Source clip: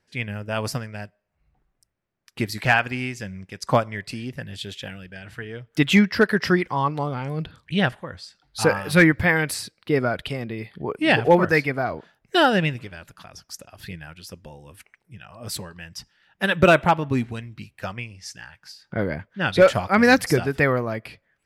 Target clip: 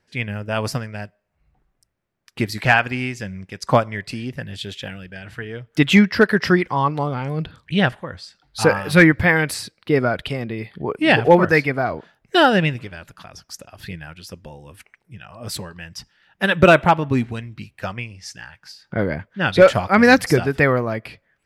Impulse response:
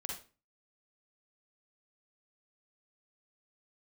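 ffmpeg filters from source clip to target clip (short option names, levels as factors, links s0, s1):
-af "highshelf=f=6600:g=-4.5,volume=1.5"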